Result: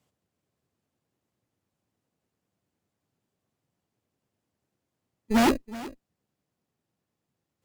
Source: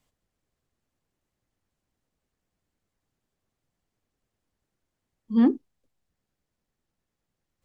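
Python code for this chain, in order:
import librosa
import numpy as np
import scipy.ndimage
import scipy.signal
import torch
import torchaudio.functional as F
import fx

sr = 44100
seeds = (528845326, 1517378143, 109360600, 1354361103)

p1 = scipy.signal.sosfilt(scipy.signal.butter(4, 89.0, 'highpass', fs=sr, output='sos'), x)
p2 = fx.sample_hold(p1, sr, seeds[0], rate_hz=2200.0, jitter_pct=0)
p3 = p1 + F.gain(torch.from_numpy(p2), -4.0).numpy()
p4 = 10.0 ** (-14.5 / 20.0) * (np.abs((p3 / 10.0 ** (-14.5 / 20.0) + 3.0) % 4.0 - 2.0) - 1.0)
p5 = fx.cheby_harmonics(p4, sr, harmonics=(6, 7), levels_db=(-11, -33), full_scale_db=-14.5)
y = p5 + 10.0 ** (-17.0 / 20.0) * np.pad(p5, (int(373 * sr / 1000.0), 0))[:len(p5)]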